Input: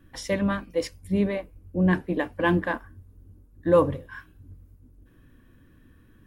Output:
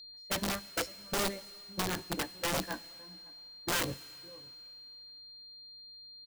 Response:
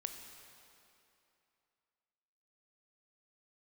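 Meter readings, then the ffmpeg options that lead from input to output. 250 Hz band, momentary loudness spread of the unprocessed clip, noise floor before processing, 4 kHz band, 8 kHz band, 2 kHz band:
−15.0 dB, 13 LU, −56 dBFS, +6.5 dB, can't be measured, −6.5 dB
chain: -filter_complex "[0:a]aeval=exprs='val(0)+0.5*0.0282*sgn(val(0))':channel_layout=same,agate=range=-39dB:threshold=-23dB:ratio=16:detection=peak,adynamicequalizer=threshold=0.0112:dfrequency=1300:dqfactor=1:tfrequency=1300:tqfactor=1:attack=5:release=100:ratio=0.375:range=3:mode=cutabove:tftype=bell,alimiter=limit=-18dB:level=0:latency=1:release=257,flanger=delay=15.5:depth=3.1:speed=0.81,asplit=2[link_01][link_02];[link_02]adelay=559.8,volume=-25dB,highshelf=frequency=4000:gain=-12.6[link_03];[link_01][link_03]amix=inputs=2:normalize=0,aeval=exprs='val(0)+0.00447*sin(2*PI*4200*n/s)':channel_layout=same,aeval=exprs='(mod(17.8*val(0)+1,2)-1)/17.8':channel_layout=same,asplit=2[link_04][link_05];[1:a]atrim=start_sample=2205,highshelf=frequency=2500:gain=12[link_06];[link_05][link_06]afir=irnorm=-1:irlink=0,volume=-13dB[link_07];[link_04][link_07]amix=inputs=2:normalize=0,volume=-3.5dB"

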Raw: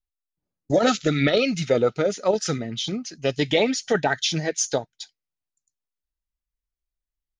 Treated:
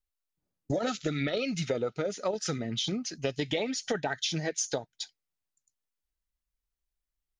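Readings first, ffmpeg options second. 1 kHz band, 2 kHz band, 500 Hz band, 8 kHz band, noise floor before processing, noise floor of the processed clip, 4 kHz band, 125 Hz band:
−10.0 dB, −9.5 dB, −10.0 dB, −6.5 dB, below −85 dBFS, below −85 dBFS, −7.0 dB, −7.0 dB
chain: -af "acompressor=threshold=-28dB:ratio=5"

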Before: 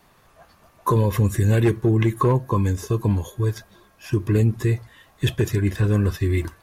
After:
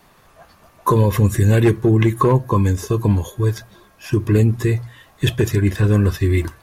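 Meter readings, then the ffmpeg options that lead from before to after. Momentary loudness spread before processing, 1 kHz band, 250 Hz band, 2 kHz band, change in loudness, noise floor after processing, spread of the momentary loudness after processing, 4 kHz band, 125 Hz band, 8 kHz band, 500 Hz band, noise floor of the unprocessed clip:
7 LU, +4.5 dB, +4.5 dB, +4.5 dB, +4.0 dB, −52 dBFS, 7 LU, +4.5 dB, +4.0 dB, +4.5 dB, +4.5 dB, −57 dBFS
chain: -af "bandreject=frequency=60:width_type=h:width=6,bandreject=frequency=120:width_type=h:width=6,volume=4.5dB"

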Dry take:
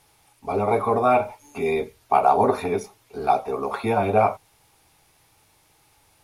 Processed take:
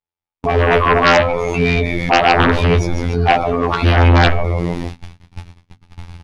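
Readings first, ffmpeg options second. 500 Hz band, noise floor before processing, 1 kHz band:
+6.0 dB, −61 dBFS, +5.0 dB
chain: -filter_complex "[0:a]asubboost=boost=9.5:cutoff=140,asplit=2[link_01][link_02];[link_02]asoftclip=type=tanh:threshold=-13.5dB,volume=-9.5dB[link_03];[link_01][link_03]amix=inputs=2:normalize=0,asplit=5[link_04][link_05][link_06][link_07][link_08];[link_05]adelay=151,afreqshift=-99,volume=-13dB[link_09];[link_06]adelay=302,afreqshift=-198,volume=-19.9dB[link_10];[link_07]adelay=453,afreqshift=-297,volume=-26.9dB[link_11];[link_08]adelay=604,afreqshift=-396,volume=-33.8dB[link_12];[link_04][link_09][link_10][link_11][link_12]amix=inputs=5:normalize=0,afftfilt=real='hypot(re,im)*cos(PI*b)':imag='0':win_size=2048:overlap=0.75,agate=range=-58dB:threshold=-49dB:ratio=16:detection=peak,aeval=exprs='0.668*(cos(1*acos(clip(val(0)/0.668,-1,1)))-cos(1*PI/2))+0.133*(cos(2*acos(clip(val(0)/0.668,-1,1)))-cos(2*PI/2))+0.00944*(cos(4*acos(clip(val(0)/0.668,-1,1)))-cos(4*PI/2))+0.015*(cos(5*acos(clip(val(0)/0.668,-1,1)))-cos(5*PI/2))':channel_layout=same,lowpass=3900,bandreject=frequency=50:width_type=h:width=6,bandreject=frequency=100:width_type=h:width=6,bandreject=frequency=150:width_type=h:width=6,bandreject=frequency=200:width_type=h:width=6,bandreject=frequency=250:width_type=h:width=6,bandreject=frequency=300:width_type=h:width=6,aeval=exprs='0.668*sin(PI/2*3.55*val(0)/0.668)':channel_layout=same,alimiter=level_in=15dB:limit=-1dB:release=50:level=0:latency=1,adynamicequalizer=threshold=0.0708:dfrequency=2000:dqfactor=0.7:tfrequency=2000:tqfactor=0.7:attack=5:release=100:ratio=0.375:range=2.5:mode=boostabove:tftype=highshelf,volume=-5dB"

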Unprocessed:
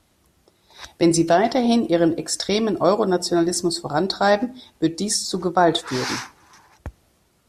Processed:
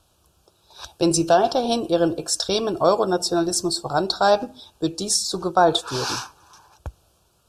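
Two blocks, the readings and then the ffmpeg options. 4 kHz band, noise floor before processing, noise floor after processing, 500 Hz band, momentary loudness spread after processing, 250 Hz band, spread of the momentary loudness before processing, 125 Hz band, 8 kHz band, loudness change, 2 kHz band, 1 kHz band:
+1.5 dB, −63 dBFS, −63 dBFS, −0.5 dB, 18 LU, −4.5 dB, 7 LU, −3.0 dB, +1.5 dB, −1.0 dB, −3.0 dB, +1.0 dB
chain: -af "asuperstop=centerf=2000:order=4:qfactor=2.1,equalizer=frequency=240:width_type=o:width=0.93:gain=-10,volume=1.5dB"

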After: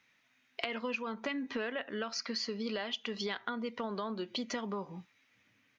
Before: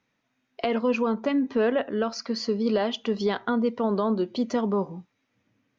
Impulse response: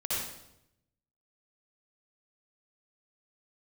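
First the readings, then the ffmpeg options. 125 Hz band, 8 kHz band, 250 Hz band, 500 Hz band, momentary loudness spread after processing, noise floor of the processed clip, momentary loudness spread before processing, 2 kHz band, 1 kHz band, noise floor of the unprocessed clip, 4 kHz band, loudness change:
−12.5 dB, can't be measured, −13.5 dB, −14.0 dB, 4 LU, −72 dBFS, 5 LU, −3.5 dB, −10.5 dB, −75 dBFS, −2.5 dB, −11.0 dB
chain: -af "firequalizer=gain_entry='entry(420,0);entry(2000,14);entry(4900,10)':delay=0.05:min_phase=1,acompressor=threshold=-29dB:ratio=6,volume=-5dB"

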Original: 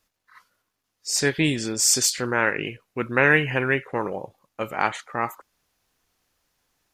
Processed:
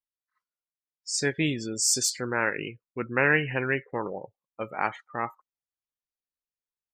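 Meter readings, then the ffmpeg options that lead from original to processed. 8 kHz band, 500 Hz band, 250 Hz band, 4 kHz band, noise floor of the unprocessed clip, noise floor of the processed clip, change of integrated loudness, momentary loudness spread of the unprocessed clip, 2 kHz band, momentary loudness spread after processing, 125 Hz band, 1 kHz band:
−5.0 dB, −4.5 dB, −4.5 dB, −5.5 dB, −79 dBFS, below −85 dBFS, −5.0 dB, 14 LU, −4.5 dB, 14 LU, −4.5 dB, −4.5 dB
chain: -af "afftdn=noise_reduction=27:noise_floor=-32,volume=-4.5dB"

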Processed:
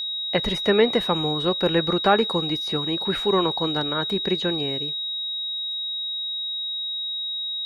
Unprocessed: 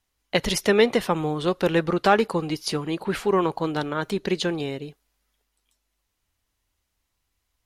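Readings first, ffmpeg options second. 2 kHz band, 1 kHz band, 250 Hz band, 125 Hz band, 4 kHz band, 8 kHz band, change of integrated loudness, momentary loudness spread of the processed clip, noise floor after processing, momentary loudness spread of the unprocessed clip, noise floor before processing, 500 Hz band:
−1.5 dB, 0.0 dB, 0.0 dB, 0.0 dB, +12.0 dB, below −10 dB, +1.0 dB, 6 LU, −29 dBFS, 8 LU, −77 dBFS, 0.0 dB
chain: -filter_complex "[0:a]acrossover=split=2600[link_01][link_02];[link_02]acompressor=threshold=-42dB:ratio=4:attack=1:release=60[link_03];[link_01][link_03]amix=inputs=2:normalize=0,aeval=exprs='val(0)+0.0501*sin(2*PI*3800*n/s)':channel_layout=same"

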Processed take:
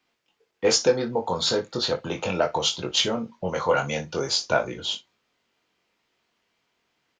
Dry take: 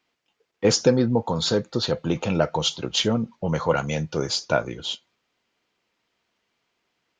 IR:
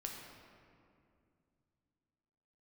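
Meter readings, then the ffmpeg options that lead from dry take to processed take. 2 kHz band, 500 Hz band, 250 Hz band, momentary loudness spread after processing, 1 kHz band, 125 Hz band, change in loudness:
+1.5 dB, −0.5 dB, −7.0 dB, 8 LU, +1.0 dB, −8.5 dB, −1.0 dB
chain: -filter_complex "[0:a]acrossover=split=410|1200[link_01][link_02][link_03];[link_01]acompressor=threshold=-33dB:ratio=6[link_04];[link_04][link_02][link_03]amix=inputs=3:normalize=0,aecho=1:1:22|60:0.596|0.15"

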